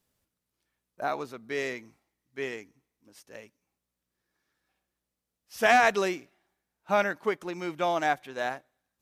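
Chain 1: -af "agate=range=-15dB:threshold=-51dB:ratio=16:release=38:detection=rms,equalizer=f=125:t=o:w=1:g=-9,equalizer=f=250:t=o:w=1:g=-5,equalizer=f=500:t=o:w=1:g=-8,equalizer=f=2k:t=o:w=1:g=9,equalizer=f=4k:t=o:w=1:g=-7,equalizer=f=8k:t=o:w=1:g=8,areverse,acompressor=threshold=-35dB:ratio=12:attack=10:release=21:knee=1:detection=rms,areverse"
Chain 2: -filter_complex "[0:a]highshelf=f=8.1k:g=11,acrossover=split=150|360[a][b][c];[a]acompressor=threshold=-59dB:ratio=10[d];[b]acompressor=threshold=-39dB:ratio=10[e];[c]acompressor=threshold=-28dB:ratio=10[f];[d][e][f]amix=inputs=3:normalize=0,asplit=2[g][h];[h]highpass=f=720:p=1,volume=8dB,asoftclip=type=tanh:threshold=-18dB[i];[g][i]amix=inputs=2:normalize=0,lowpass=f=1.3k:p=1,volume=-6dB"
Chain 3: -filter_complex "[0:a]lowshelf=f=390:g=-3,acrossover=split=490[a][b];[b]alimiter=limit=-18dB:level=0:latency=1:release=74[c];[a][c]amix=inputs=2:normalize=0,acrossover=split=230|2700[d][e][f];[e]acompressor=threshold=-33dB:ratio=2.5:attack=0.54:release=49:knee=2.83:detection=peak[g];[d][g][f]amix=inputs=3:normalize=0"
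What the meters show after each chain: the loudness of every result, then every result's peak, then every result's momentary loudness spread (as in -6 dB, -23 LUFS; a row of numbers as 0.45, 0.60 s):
-38.0, -35.0, -36.5 LUFS; -22.5, -20.5, -22.0 dBFS; 13, 16, 16 LU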